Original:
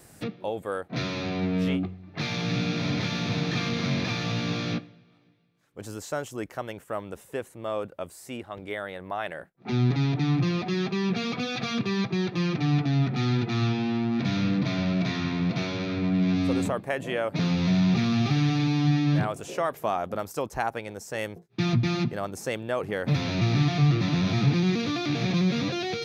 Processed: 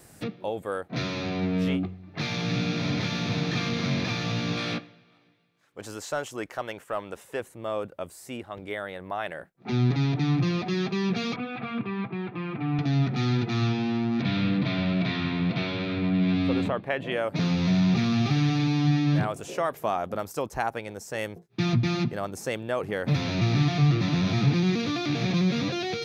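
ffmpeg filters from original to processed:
-filter_complex "[0:a]asettb=1/sr,asplit=3[a][b][c];[a]atrim=end=4.574[d];[b]atrim=start=4.57:end=7.4,asetpts=PTS-STARTPTS,afade=t=in:d=0.004:c=qsin,afade=t=out:st=2.826:d=0.004:c=qsin,asplit=2[e][f];[f]highpass=f=720:p=1,volume=9dB,asoftclip=type=tanh:threshold=-17.5dB[g];[e][g]amix=inputs=2:normalize=0,lowpass=f=5.3k:p=1,volume=-6dB[h];[c]atrim=start=7.396[i];[d][h]acrossfade=d=0.004:c1=hsin:c2=qsin[j];[j][i]acrossfade=d=0.004:c1=qsin:c2=hsin,asettb=1/sr,asplit=3[k][l][m];[k]atrim=end=11.364[n];[l]atrim=start=11.36:end=12.79,asetpts=PTS-STARTPTS,afade=t=in:d=0.004:c=qsin,afade=t=out:st=1.426:d=0.004:c=qsin,highpass=130,equalizer=f=170:t=q:w=4:g=-7,equalizer=f=370:t=q:w=4:g=-5,equalizer=f=560:t=q:w=4:g=-7,equalizer=f=1.8k:t=q:w=4:g=-6,lowpass=f=2.4k:w=0.5412,lowpass=f=2.4k:w=1.3066[o];[m]atrim=start=12.786[p];[n][o]acrossfade=d=0.004:c1=hsin:c2=qsin[q];[q][p]acrossfade=d=0.004:c1=qsin:c2=hsin,asettb=1/sr,asplit=3[r][s][t];[r]atrim=end=14.224[u];[s]atrim=start=14.22:end=17.12,asetpts=PTS-STARTPTS,afade=t=in:d=0.004:c=qsin,afade=t=out:st=2.896:d=0.004:c=qsin,highshelf=f=5.2k:t=q:w=1.5:g=-13.5[v];[t]atrim=start=17.116[w];[u][v]acrossfade=d=0.004:c1=hsin:c2=qsin[x];[x][w]acrossfade=d=0.004:c1=qsin:c2=hsin"

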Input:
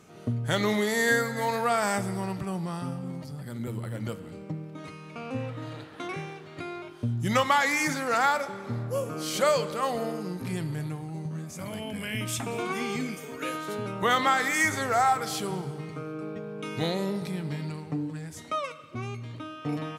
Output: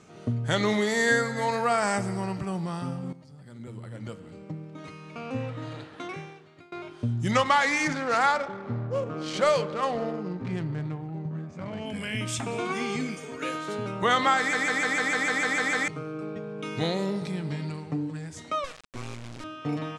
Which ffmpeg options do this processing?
-filter_complex "[0:a]asettb=1/sr,asplit=3[a][b][c];[a]atrim=end=1.504[d];[b]atrim=start=1.5:end=2.47,asetpts=PTS-STARTPTS,afade=t=in:d=0.004:c=qsin,afade=t=out:st=0.966:d=0.004:c=qsin,bandreject=f=3.5k:w=9[e];[c]atrim=start=2.466[f];[d][e]acrossfade=d=0.004:c1=hsin:c2=qsin[g];[g][f]acrossfade=d=0.004:c1=qsin:c2=hsin,asettb=1/sr,asplit=3[h][i][j];[h]atrim=end=7.314[k];[i]atrim=start=7.31:end=11.86,asetpts=PTS-STARTPTS,afade=t=in:d=0.004:c=qsin,afade=t=out:st=4.546:d=0.004:c=qsin,adynamicsmooth=sensitivity=6.5:basefreq=1.6k[l];[j]atrim=start=11.856[m];[k][l]acrossfade=d=0.004:c1=hsin:c2=qsin[n];[n][m]acrossfade=d=0.004:c1=qsin:c2=hsin,asettb=1/sr,asplit=3[o][p][q];[o]atrim=end=18.644[r];[p]atrim=start=18.64:end=19.44,asetpts=PTS-STARTPTS,afade=t=in:d=0.004:c=qsin,afade=t=out:st=0.796:d=0.004:c=qsin,acrusher=bits=4:dc=4:mix=0:aa=0.000001[s];[q]atrim=start=19.436[t];[r][s]acrossfade=d=0.004:c1=hsin:c2=qsin[u];[u][t]acrossfade=d=0.004:c1=qsin:c2=hsin,asplit=13[v][w][x][y][z][aa][ab][ac][ad][ae][af][ag][ah];[v]atrim=end=3.13,asetpts=PTS-STARTPTS,afade=t=out:st=3.126:d=0.004:c=hsin:silence=0.199526[ai];[w]atrim=start=3.13:end=6.72,asetpts=PTS-STARTPTS,afade=t=in:d=2.21:silence=0.199526,afade=t=out:st=2.71:d=0.88:silence=0.0630957[aj];[x]atrim=start=6.72:end=14.532,asetpts=PTS-STARTPTS,afade=t=in:d=0.004:c=hsin:silence=0.0630957[ak];[y]atrim=start=14.378:end=14.532[al];[z]atrim=start=14.378:end=14.532[am];[aa]atrim=start=14.378:end=14.532[an];[ab]atrim=start=14.378:end=14.532[ao];[ac]atrim=start=14.378:end=14.532[ap];[ad]atrim=start=14.378:end=14.532[aq];[ae]atrim=start=14.378:end=14.532[ar];[af]atrim=start=14.378:end=14.532[as];[ag]atrim=start=14.378:end=14.532[at];[ah]atrim=start=15.878[au];[ai][aj][ak]concat=n=3:v=0:a=1[av];[av][al]acrossfade=d=0.004:c1=hsin:c2=hsin[aw];[aw][am]acrossfade=d=0.004:c1=hsin:c2=hsin[ax];[ax][an]acrossfade=d=0.004:c1=hsin:c2=hsin[ay];[ay][ao]acrossfade=d=0.004:c1=hsin:c2=hsin[az];[az][ap]acrossfade=d=0.004:c1=hsin:c2=hsin[ba];[ba][aq]acrossfade=d=0.004:c1=hsin:c2=hsin[bb];[bb][ar]acrossfade=d=0.004:c1=hsin:c2=hsin[bc];[bc][as]acrossfade=d=0.004:c1=hsin:c2=hsin[bd];[bd][at]acrossfade=d=0.004:c1=hsin:c2=hsin[be];[be][au]acrossfade=d=0.004:c1=hsin:c2=hsin,lowpass=f=8.8k:w=0.5412,lowpass=f=8.8k:w=1.3066,volume=1dB"

